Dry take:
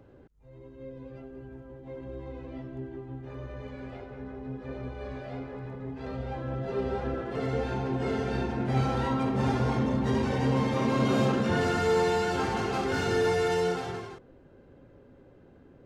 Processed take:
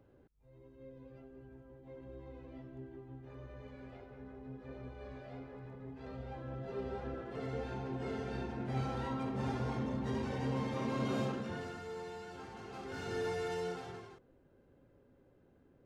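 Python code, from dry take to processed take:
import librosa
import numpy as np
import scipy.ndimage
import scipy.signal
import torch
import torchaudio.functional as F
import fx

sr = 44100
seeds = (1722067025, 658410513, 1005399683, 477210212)

y = fx.gain(x, sr, db=fx.line((11.19, -10.0), (11.85, -20.0), (12.55, -20.0), (13.19, -11.5)))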